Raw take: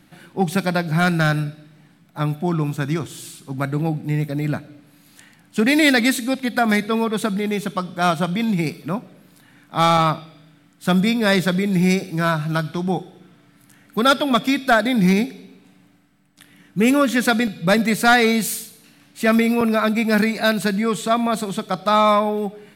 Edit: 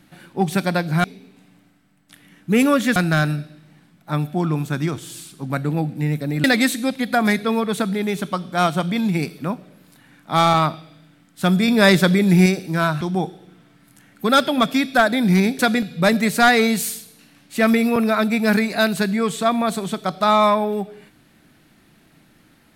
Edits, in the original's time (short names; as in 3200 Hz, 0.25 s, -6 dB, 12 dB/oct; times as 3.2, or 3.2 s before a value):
4.52–5.88 cut
11.12–11.9 gain +4 dB
12.45–12.74 cut
15.32–17.24 move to 1.04